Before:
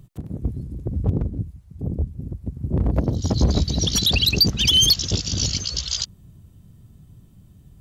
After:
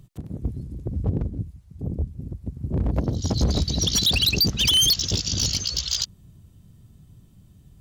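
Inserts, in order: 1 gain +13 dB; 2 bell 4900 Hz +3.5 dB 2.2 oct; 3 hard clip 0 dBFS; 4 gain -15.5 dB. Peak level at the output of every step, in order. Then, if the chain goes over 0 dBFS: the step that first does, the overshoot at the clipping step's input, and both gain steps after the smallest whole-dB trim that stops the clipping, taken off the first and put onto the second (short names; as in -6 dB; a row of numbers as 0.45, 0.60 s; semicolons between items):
+5.5, +8.5, 0.0, -15.5 dBFS; step 1, 8.5 dB; step 1 +4 dB, step 4 -6.5 dB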